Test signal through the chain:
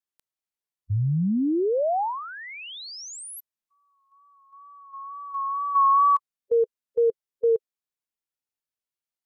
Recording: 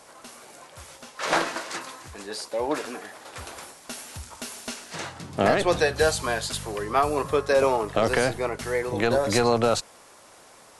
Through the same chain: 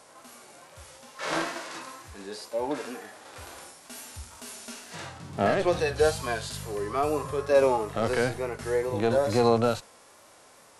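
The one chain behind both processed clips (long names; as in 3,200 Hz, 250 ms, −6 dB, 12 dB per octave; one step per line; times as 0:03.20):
harmonic and percussive parts rebalanced percussive −16 dB
tape wow and flutter 39 cents
level +1 dB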